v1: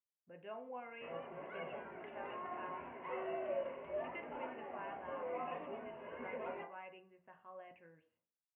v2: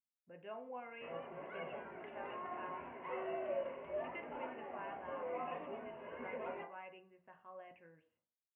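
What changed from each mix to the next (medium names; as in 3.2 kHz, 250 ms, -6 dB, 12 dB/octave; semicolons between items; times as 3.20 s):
no change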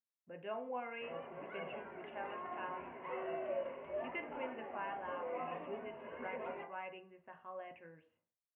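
speech +5.5 dB; master: add hum notches 60/120/180 Hz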